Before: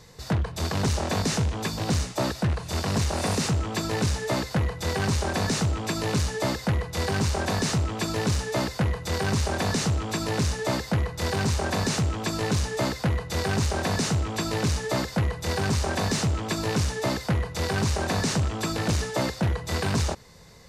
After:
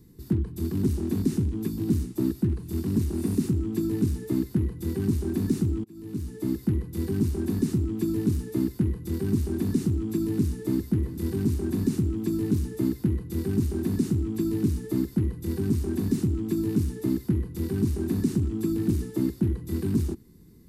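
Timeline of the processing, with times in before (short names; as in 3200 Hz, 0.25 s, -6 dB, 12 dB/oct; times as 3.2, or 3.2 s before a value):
5.84–6.64 fade in
10.26–11.01 echo throw 0.38 s, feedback 70%, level -15.5 dB
whole clip: EQ curve 150 Hz 0 dB, 230 Hz +7 dB, 350 Hz +9 dB, 560 Hz -24 dB, 1000 Hz -18 dB, 6400 Hz -16 dB, 13000 Hz +4 dB; gain -1.5 dB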